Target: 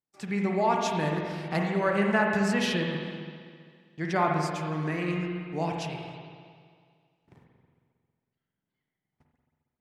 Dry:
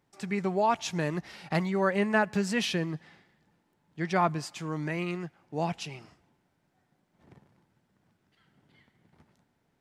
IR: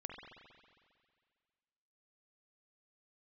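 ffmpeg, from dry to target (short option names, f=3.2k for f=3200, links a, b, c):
-filter_complex "[0:a]agate=range=-24dB:threshold=-57dB:ratio=16:detection=peak[a];[1:a]atrim=start_sample=2205[b];[a][b]afir=irnorm=-1:irlink=0,volume=4.5dB"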